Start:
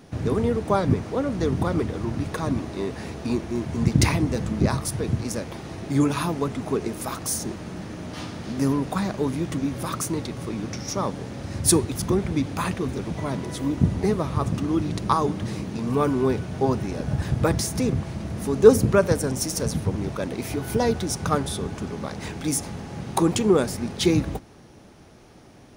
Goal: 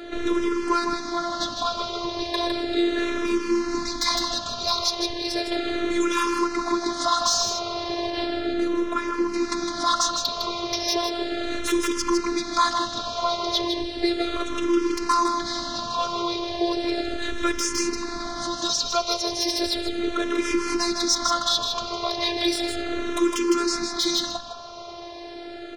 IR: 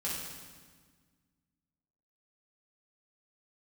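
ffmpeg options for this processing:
-filter_complex "[0:a]asettb=1/sr,asplit=3[link_01][link_02][link_03];[link_01]atrim=end=8.104[link_04];[link_02]atrim=start=8.1:end=9.34,asetpts=PTS-STARTPTS,afade=type=in:duration=0.004:curve=qsin,afade=type=out:start_time=1.236:duration=0.004:curve=qsin,highshelf=frequency=2300:gain=-10[link_05];[link_03]atrim=start=9.336[link_06];[link_04][link_05]acrossfade=duration=0.004:curve1=hsin:curve2=qsin[link_07];[link_07][link_06]acrossfade=duration=0.004:curve1=qsin:curve2=hsin,acrossover=split=2600[link_08][link_09];[link_08]acompressor=threshold=-34dB:ratio=5[link_10];[link_09]aeval=exprs='(mod(5.31*val(0)+1,2)-1)/5.31':channel_layout=same[link_11];[link_10][link_11]amix=inputs=2:normalize=0,highpass=110,equalizer=frequency=190:width_type=q:width=4:gain=-10,equalizer=frequency=280:width_type=q:width=4:gain=-4,equalizer=frequency=510:width_type=q:width=4:gain=6,equalizer=frequency=1200:width_type=q:width=4:gain=10,equalizer=frequency=2700:width_type=q:width=4:gain=-4,equalizer=frequency=4000:width_type=q:width=4:gain=8,lowpass=frequency=5800:width=0.5412,lowpass=frequency=5800:width=1.3066,asoftclip=type=tanh:threshold=-24.5dB,asplit=2[link_12][link_13];[link_13]aecho=0:1:157:0.473[link_14];[link_12][link_14]amix=inputs=2:normalize=0,afftfilt=real='hypot(re,im)*cos(PI*b)':imag='0':win_size=512:overlap=0.75,alimiter=level_in=20.5dB:limit=-1dB:release=50:level=0:latency=1,asplit=2[link_15][link_16];[link_16]afreqshift=-0.35[link_17];[link_15][link_17]amix=inputs=2:normalize=1,volume=-2dB"

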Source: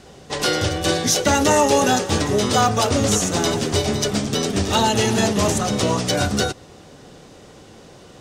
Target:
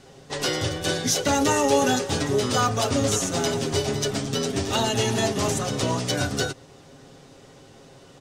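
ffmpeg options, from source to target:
ffmpeg -i in.wav -af "aecho=1:1:7.4:0.52,volume=-5.5dB" out.wav

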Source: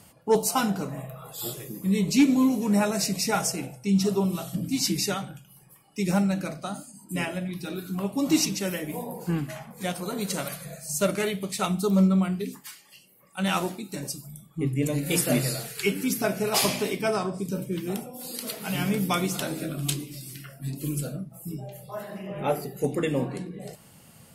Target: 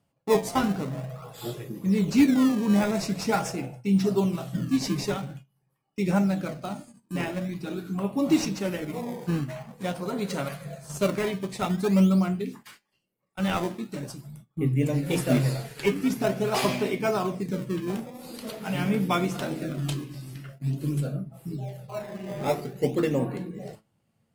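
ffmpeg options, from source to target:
ffmpeg -i in.wav -filter_complex "[0:a]agate=range=-19dB:threshold=-45dB:ratio=16:detection=peak,lowpass=frequency=2900:poles=1,asplit=2[link_01][link_02];[link_02]acrusher=samples=18:mix=1:aa=0.000001:lfo=1:lforange=28.8:lforate=0.46,volume=-6dB[link_03];[link_01][link_03]amix=inputs=2:normalize=0,flanger=delay=7.2:depth=2:regen=71:speed=0.19:shape=triangular,volume=2.5dB" out.wav

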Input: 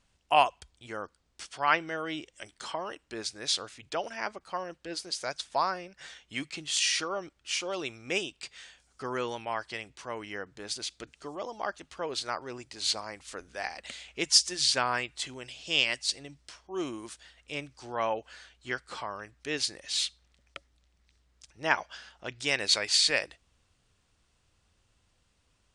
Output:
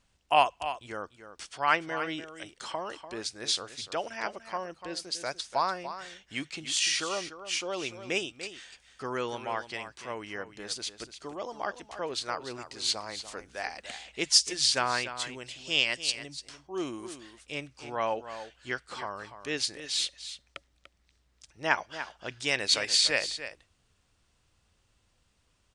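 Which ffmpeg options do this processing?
ffmpeg -i in.wav -af "aecho=1:1:293:0.266" out.wav

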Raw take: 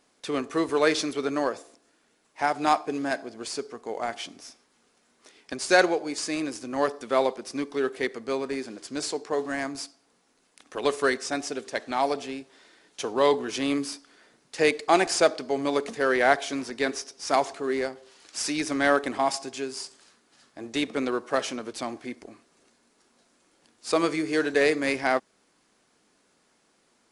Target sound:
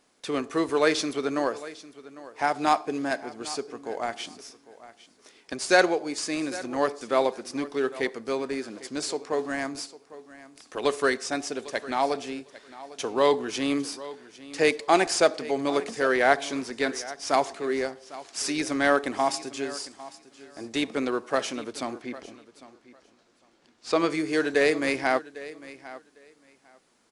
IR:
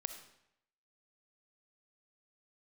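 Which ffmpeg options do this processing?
-filter_complex "[0:a]asettb=1/sr,asplit=3[link_01][link_02][link_03];[link_01]atrim=end=22.024[link_04];[link_02]atrim=start=22.02:end=24.1,asetpts=PTS-STARTPTS,afade=type=in:duration=0.004:curve=qsin,afade=type=out:start_time=2.076:duration=0.004:curve=qsin,lowpass=5700[link_05];[link_03]atrim=start=24.096[link_06];[link_04][link_05]acrossfade=duration=0.004:curve1=hsin:curve2=qsin[link_07];[link_07][link_06]acrossfade=duration=0.004:curve1=qsin:curve2=hsin,asplit=2[link_08][link_09];[link_09]aecho=0:1:802|1604:0.133|0.0227[link_10];[link_08][link_10]amix=inputs=2:normalize=0"

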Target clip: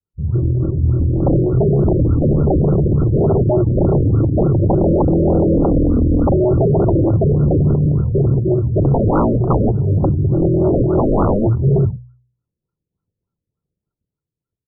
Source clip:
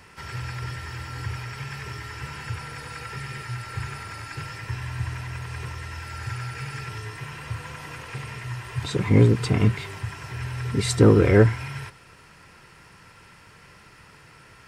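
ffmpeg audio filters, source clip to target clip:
ffmpeg -i in.wav -filter_complex "[0:a]acrossover=split=240|930[link_01][link_02][link_03];[link_02]acrusher=bits=2:mode=log:mix=0:aa=0.000001[link_04];[link_01][link_04][link_03]amix=inputs=3:normalize=0,agate=range=-41dB:threshold=-44dB:ratio=16:detection=peak,equalizer=frequency=1000:width=1.2:gain=-15,afwtdn=0.0158,acrossover=split=630|2700[link_05][link_06][link_07];[link_06]adelay=40[link_08];[link_07]adelay=220[link_09];[link_05][link_08][link_09]amix=inputs=3:normalize=0,dynaudnorm=framelen=130:gausssize=21:maxgain=10dB,adynamicequalizer=threshold=0.0398:dfrequency=180:dqfactor=1.2:tfrequency=180:tqfactor=1.2:attack=5:release=100:ratio=0.375:range=3:mode=boostabove:tftype=bell,acompressor=threshold=-21dB:ratio=20,aresample=8000,aeval=exprs='0.178*sin(PI/2*5.62*val(0)/0.178)':channel_layout=same,aresample=44100,bandreject=frequency=61.2:width_type=h:width=4,bandreject=frequency=122.4:width_type=h:width=4,afftfilt=real='re*lt(b*sr/1024,590*pow(1500/590,0.5+0.5*sin(2*PI*3.4*pts/sr)))':imag='im*lt(b*sr/1024,590*pow(1500/590,0.5+0.5*sin(2*PI*3.4*pts/sr)))':win_size=1024:overlap=0.75,volume=5dB" out.wav

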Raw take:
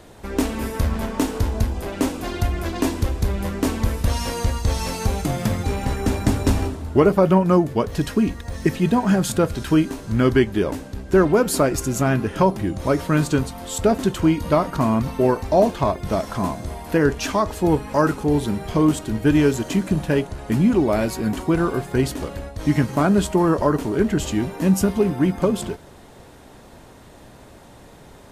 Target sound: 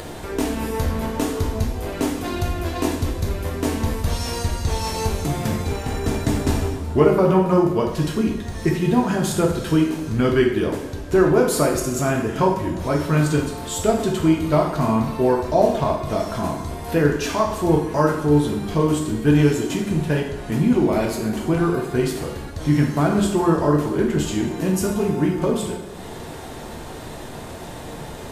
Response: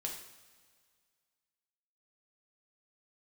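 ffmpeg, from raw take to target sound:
-filter_complex "[0:a]acompressor=mode=upward:threshold=-22dB:ratio=2.5[link_01];[1:a]atrim=start_sample=2205[link_02];[link_01][link_02]afir=irnorm=-1:irlink=0"

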